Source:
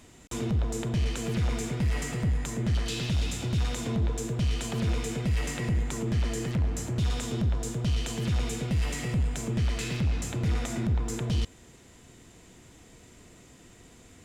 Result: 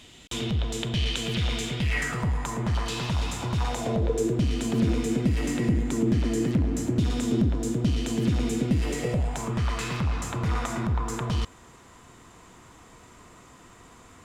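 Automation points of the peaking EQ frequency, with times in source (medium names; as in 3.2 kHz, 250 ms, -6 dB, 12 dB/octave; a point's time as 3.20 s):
peaking EQ +14 dB 0.92 oct
1.81 s 3.3 kHz
2.24 s 1 kHz
3.60 s 1 kHz
4.44 s 280 Hz
8.78 s 280 Hz
9.49 s 1.1 kHz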